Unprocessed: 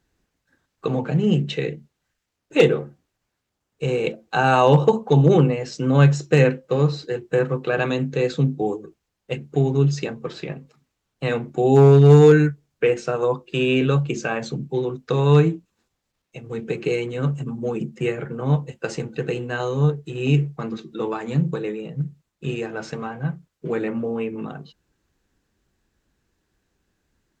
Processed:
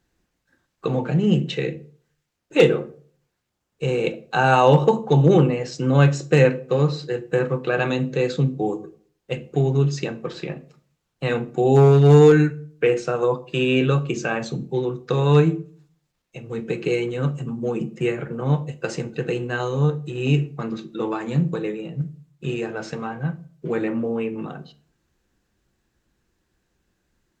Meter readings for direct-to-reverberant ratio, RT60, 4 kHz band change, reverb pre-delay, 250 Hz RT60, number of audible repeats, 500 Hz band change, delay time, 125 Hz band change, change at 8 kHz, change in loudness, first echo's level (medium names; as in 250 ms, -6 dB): 10.5 dB, 0.50 s, +0.5 dB, 6 ms, 0.60 s, no echo, 0.0 dB, no echo, -1.0 dB, no reading, -0.5 dB, no echo